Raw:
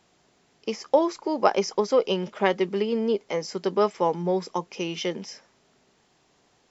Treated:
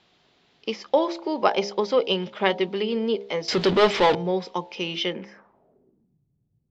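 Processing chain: 3.48–4.15 s: power-law waveshaper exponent 0.5; low-pass sweep 3.7 kHz -> 130 Hz, 5.02–6.24 s; de-hum 67.33 Hz, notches 14

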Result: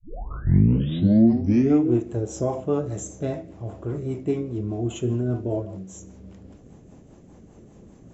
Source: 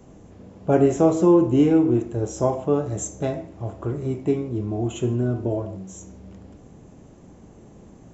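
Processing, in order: tape start-up on the opening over 1.89 s; rotary cabinet horn 5 Hz

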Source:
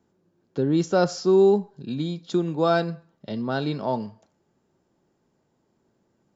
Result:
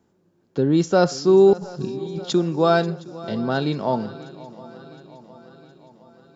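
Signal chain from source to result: 1.53–2.33 s: compressor with a negative ratio -37 dBFS, ratio -1; shuffle delay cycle 714 ms, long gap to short 3:1, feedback 56%, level -19 dB; trim +3.5 dB

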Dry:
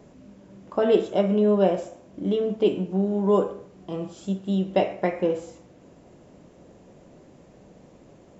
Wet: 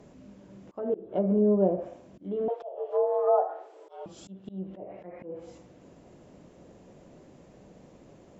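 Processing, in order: low-pass that closes with the level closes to 590 Hz, closed at -17.5 dBFS; 2.48–4.06 s: frequency shift +260 Hz; slow attack 327 ms; trim -2 dB

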